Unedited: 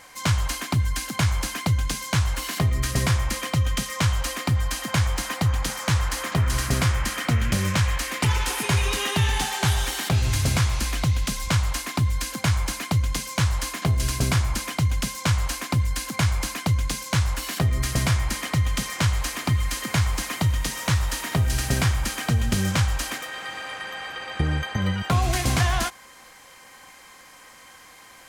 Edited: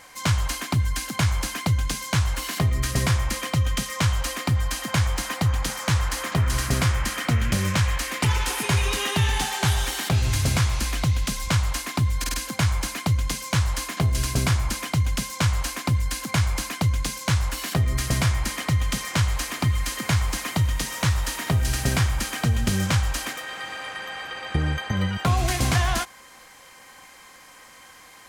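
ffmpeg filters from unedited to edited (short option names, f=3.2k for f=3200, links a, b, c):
-filter_complex "[0:a]asplit=4[a][b][c][d];[a]atrim=end=12.242[e];[b]atrim=start=12.188:end=12.242[f];[c]atrim=start=12.188:end=12.242[g];[d]atrim=start=12.188[h];[e][f]acrossfade=d=0.004:c1=hsin:c2=hsin[i];[i][g]acrossfade=d=0.004:c1=hsin:c2=hsin[j];[j][h]acrossfade=d=0.004:c1=hsin:c2=hsin"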